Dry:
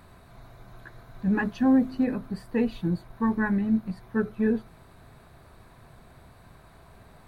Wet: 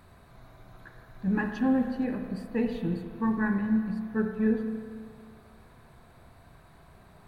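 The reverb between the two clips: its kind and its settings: spring tank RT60 1.8 s, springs 32/54 ms, chirp 45 ms, DRR 4.5 dB; gain -3.5 dB

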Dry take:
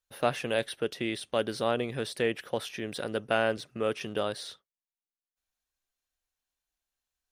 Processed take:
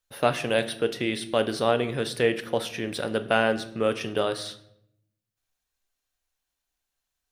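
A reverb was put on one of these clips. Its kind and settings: shoebox room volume 170 m³, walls mixed, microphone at 0.32 m; gain +4.5 dB

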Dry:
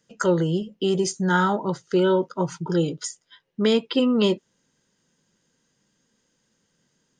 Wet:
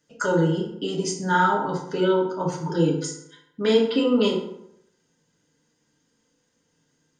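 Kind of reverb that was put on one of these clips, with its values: FDN reverb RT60 0.78 s, low-frequency decay 0.95×, high-frequency decay 0.6×, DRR -2.5 dB; gain -4 dB

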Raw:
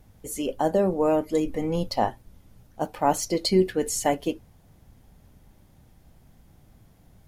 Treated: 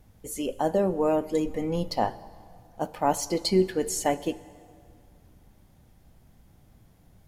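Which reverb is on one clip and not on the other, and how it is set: plate-style reverb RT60 2.3 s, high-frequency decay 0.7×, DRR 16.5 dB; gain -2 dB

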